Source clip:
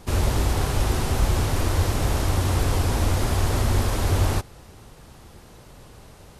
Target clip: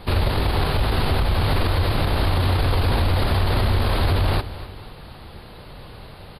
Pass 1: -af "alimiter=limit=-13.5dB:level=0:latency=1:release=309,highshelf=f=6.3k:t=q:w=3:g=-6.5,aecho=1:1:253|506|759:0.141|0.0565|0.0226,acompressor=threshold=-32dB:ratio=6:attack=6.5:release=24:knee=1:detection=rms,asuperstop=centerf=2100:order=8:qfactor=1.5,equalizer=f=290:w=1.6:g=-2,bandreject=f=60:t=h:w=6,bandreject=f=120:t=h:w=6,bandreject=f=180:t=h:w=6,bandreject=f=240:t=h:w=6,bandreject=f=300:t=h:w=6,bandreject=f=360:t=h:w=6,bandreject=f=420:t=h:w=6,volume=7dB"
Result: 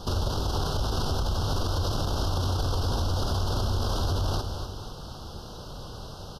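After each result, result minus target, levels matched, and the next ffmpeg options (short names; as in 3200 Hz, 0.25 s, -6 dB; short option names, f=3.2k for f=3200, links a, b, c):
8000 Hz band +10.0 dB; compressor: peak gain reduction +7.5 dB
-af "alimiter=limit=-13.5dB:level=0:latency=1:release=309,highshelf=f=6.3k:t=q:w=3:g=-6.5,aecho=1:1:253|506|759:0.141|0.0565|0.0226,acompressor=threshold=-32dB:ratio=6:attack=6.5:release=24:knee=1:detection=rms,asuperstop=centerf=6400:order=8:qfactor=1.5,equalizer=f=290:w=1.6:g=-2,bandreject=f=60:t=h:w=6,bandreject=f=120:t=h:w=6,bandreject=f=180:t=h:w=6,bandreject=f=240:t=h:w=6,bandreject=f=300:t=h:w=6,bandreject=f=360:t=h:w=6,bandreject=f=420:t=h:w=6,volume=7dB"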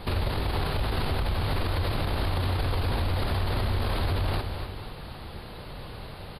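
compressor: peak gain reduction +7.5 dB
-af "alimiter=limit=-13.5dB:level=0:latency=1:release=309,highshelf=f=6.3k:t=q:w=3:g=-6.5,aecho=1:1:253|506|759:0.141|0.0565|0.0226,acompressor=threshold=-23dB:ratio=6:attack=6.5:release=24:knee=1:detection=rms,asuperstop=centerf=6400:order=8:qfactor=1.5,equalizer=f=290:w=1.6:g=-2,bandreject=f=60:t=h:w=6,bandreject=f=120:t=h:w=6,bandreject=f=180:t=h:w=6,bandreject=f=240:t=h:w=6,bandreject=f=300:t=h:w=6,bandreject=f=360:t=h:w=6,bandreject=f=420:t=h:w=6,volume=7dB"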